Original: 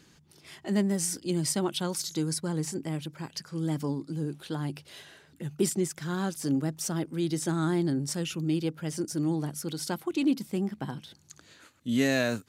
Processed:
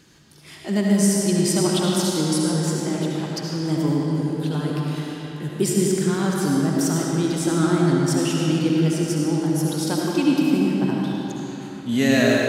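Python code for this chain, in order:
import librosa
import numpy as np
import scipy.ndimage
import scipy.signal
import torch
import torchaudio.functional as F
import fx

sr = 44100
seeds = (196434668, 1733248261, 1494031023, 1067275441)

y = fx.rev_freeverb(x, sr, rt60_s=3.9, hf_ratio=0.7, predelay_ms=35, drr_db=-3.5)
y = F.gain(torch.from_numpy(y), 4.5).numpy()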